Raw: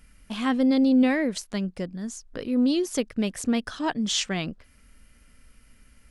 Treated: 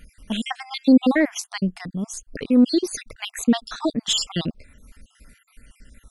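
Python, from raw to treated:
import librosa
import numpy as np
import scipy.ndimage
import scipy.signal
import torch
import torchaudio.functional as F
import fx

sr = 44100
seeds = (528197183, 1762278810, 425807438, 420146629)

y = fx.spec_dropout(x, sr, seeds[0], share_pct=56)
y = y * librosa.db_to_amplitude(8.0)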